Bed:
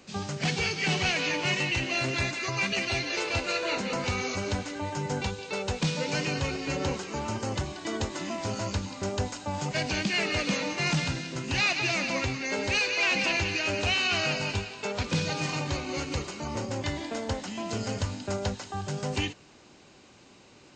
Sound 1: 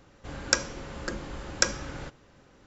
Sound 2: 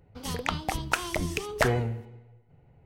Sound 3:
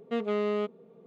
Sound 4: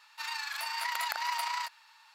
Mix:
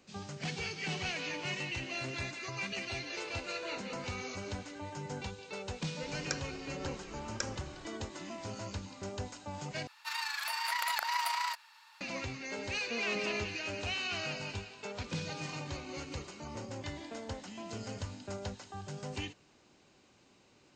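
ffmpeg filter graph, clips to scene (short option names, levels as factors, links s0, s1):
-filter_complex "[0:a]volume=0.316,asplit=2[s0][s1];[s0]atrim=end=9.874[s2];[4:a]atrim=end=2.14[s3];[s1]atrim=start=12.006[s4];[1:a]atrim=end=2.66,asetpts=PTS-STARTPTS,volume=0.2,afade=t=in:d=0.004:c=hsin,afade=t=out:st=2.656:d=0.004:c=hsin,adelay=5780[s5];[3:a]atrim=end=1.06,asetpts=PTS-STARTPTS,volume=0.299,afade=t=in:d=0.004:c=hsin,afade=t=out:st=1.056:d=0.004:c=hsin,adelay=12790[s6];[s2][s3]acrossfade=d=0.004:c1=hsin:c2=hsin[s7];[s7][s4]acrossfade=d=0.004:c1=hsin:c2=hsin[s8];[s8][s5][s6]amix=inputs=3:normalize=0"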